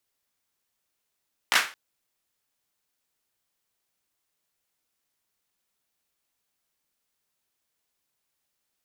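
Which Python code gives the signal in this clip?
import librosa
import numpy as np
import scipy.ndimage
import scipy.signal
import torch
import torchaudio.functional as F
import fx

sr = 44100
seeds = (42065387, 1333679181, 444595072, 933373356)

y = fx.drum_clap(sr, seeds[0], length_s=0.22, bursts=3, spacing_ms=16, hz=1700.0, decay_s=0.32)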